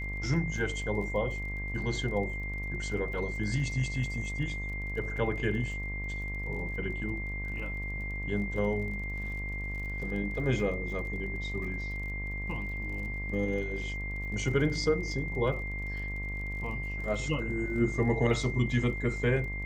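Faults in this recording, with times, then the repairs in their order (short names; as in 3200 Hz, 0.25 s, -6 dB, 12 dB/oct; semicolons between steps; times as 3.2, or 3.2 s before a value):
buzz 50 Hz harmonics 24 -37 dBFS
crackle 34/s -41 dBFS
tone 2100 Hz -37 dBFS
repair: de-click; de-hum 50 Hz, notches 24; notch 2100 Hz, Q 30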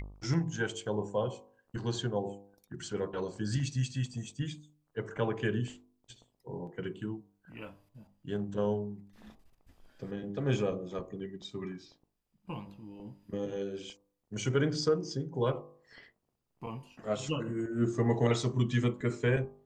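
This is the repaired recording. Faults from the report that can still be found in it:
none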